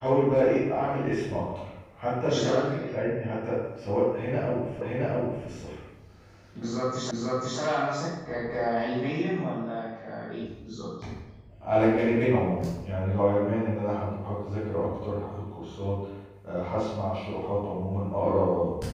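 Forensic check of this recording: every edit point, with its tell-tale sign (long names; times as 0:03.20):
0:04.81: the same again, the last 0.67 s
0:07.11: the same again, the last 0.49 s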